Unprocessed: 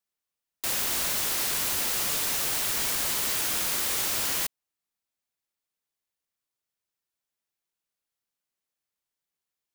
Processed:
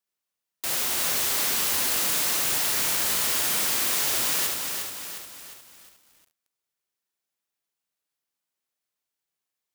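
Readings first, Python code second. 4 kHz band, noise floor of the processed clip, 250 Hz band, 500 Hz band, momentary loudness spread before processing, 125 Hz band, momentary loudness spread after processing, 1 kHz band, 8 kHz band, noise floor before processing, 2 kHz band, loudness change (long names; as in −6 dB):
+3.0 dB, below −85 dBFS, +2.0 dB, +2.5 dB, 2 LU, 0.0 dB, 11 LU, +3.0 dB, +3.0 dB, below −85 dBFS, +3.0 dB, +2.5 dB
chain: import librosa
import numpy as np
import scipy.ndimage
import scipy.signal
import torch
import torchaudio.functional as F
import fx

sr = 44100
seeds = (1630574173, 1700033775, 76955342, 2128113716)

y = fx.low_shelf(x, sr, hz=92.0, db=-8.5)
y = fx.room_early_taps(y, sr, ms=(36, 73), db=(-9.5, -4.5))
y = fx.echo_crushed(y, sr, ms=356, feedback_pct=55, bits=8, wet_db=-5)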